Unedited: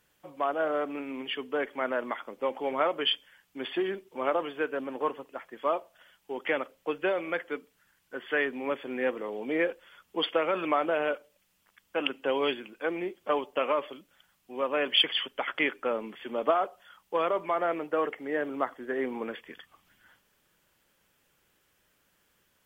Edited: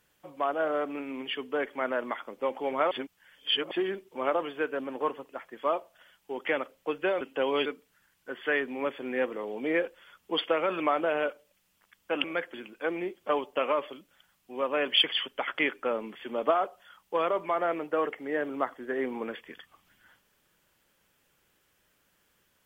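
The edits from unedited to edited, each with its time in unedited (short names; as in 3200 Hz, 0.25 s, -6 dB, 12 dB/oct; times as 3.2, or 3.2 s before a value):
2.91–3.71 reverse
7.21–7.51 swap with 12.09–12.54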